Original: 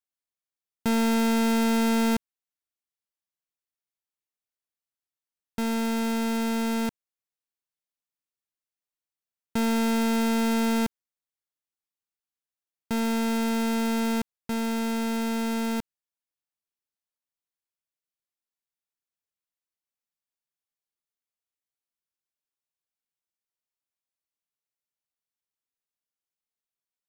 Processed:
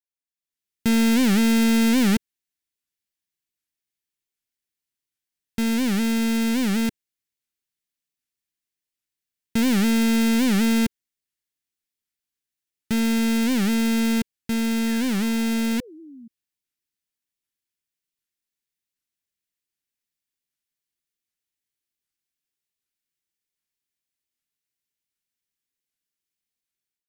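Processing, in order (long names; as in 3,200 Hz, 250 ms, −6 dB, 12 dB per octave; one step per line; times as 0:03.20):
automatic gain control gain up to 11 dB
sound drawn into the spectrogram fall, 0:14.87–0:16.28, 220–1,900 Hz −37 dBFS
flat-topped bell 810 Hz −9.5 dB
wow of a warped record 78 rpm, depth 250 cents
level −5.5 dB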